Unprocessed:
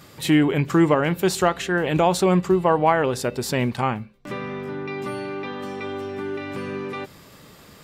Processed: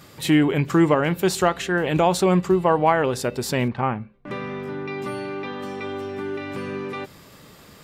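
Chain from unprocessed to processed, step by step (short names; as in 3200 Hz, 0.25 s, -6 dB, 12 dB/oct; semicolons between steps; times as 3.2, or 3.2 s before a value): 3.68–4.31 LPF 2100 Hz 12 dB/oct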